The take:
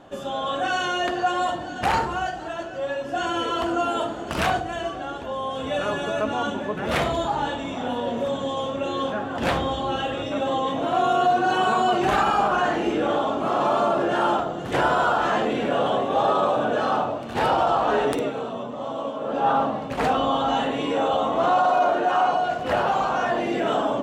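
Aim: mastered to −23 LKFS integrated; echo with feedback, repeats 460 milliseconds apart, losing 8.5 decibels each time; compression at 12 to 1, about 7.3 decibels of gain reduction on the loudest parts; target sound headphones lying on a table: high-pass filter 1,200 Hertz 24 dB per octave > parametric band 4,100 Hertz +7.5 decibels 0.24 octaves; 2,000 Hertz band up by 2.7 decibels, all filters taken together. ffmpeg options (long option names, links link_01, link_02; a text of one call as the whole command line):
ffmpeg -i in.wav -af "equalizer=frequency=2000:width_type=o:gain=4.5,acompressor=threshold=-23dB:ratio=12,highpass=frequency=1200:width=0.5412,highpass=frequency=1200:width=1.3066,equalizer=frequency=4100:width_type=o:width=0.24:gain=7.5,aecho=1:1:460|920|1380|1840:0.376|0.143|0.0543|0.0206,volume=9.5dB" out.wav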